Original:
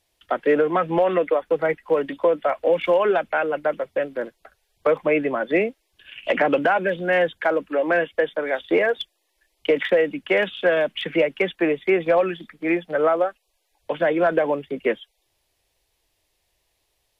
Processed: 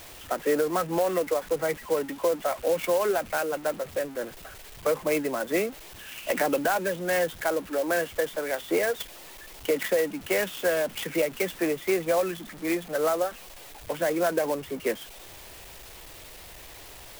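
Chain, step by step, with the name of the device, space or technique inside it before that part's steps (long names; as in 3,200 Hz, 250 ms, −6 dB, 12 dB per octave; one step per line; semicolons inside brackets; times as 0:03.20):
early CD player with a faulty converter (converter with a step at zero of −32 dBFS; converter with an unsteady clock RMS 0.043 ms)
level −6.5 dB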